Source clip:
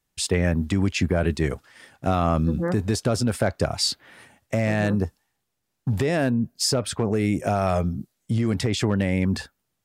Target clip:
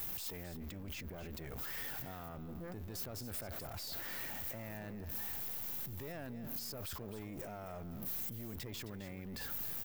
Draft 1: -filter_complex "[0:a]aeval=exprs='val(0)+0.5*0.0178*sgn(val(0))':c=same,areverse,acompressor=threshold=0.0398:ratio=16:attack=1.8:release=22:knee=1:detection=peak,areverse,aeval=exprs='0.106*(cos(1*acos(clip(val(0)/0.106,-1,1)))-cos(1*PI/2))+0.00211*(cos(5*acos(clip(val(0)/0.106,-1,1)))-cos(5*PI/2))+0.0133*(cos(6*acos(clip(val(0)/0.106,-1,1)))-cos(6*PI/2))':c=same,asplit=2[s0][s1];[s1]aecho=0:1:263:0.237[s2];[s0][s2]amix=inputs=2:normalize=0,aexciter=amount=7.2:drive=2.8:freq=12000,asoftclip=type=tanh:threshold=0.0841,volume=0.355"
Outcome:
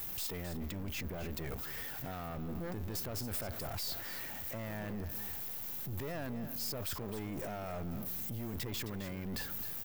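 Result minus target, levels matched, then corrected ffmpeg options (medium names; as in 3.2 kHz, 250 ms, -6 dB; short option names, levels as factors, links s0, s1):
compression: peak gain reduction -7 dB
-filter_complex "[0:a]aeval=exprs='val(0)+0.5*0.0178*sgn(val(0))':c=same,areverse,acompressor=threshold=0.0168:ratio=16:attack=1.8:release=22:knee=1:detection=peak,areverse,aeval=exprs='0.106*(cos(1*acos(clip(val(0)/0.106,-1,1)))-cos(1*PI/2))+0.00211*(cos(5*acos(clip(val(0)/0.106,-1,1)))-cos(5*PI/2))+0.0133*(cos(6*acos(clip(val(0)/0.106,-1,1)))-cos(6*PI/2))':c=same,asplit=2[s0][s1];[s1]aecho=0:1:263:0.237[s2];[s0][s2]amix=inputs=2:normalize=0,aexciter=amount=7.2:drive=2.8:freq=12000,asoftclip=type=tanh:threshold=0.0841,volume=0.355"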